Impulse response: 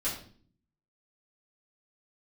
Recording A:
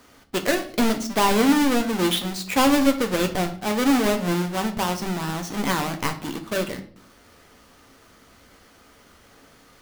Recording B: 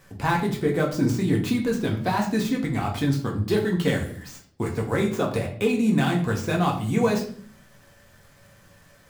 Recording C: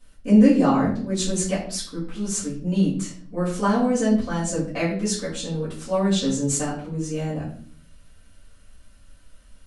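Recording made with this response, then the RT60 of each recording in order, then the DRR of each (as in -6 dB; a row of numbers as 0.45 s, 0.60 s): C; 0.50 s, 0.50 s, 0.50 s; 5.0 dB, -0.5 dB, -10.5 dB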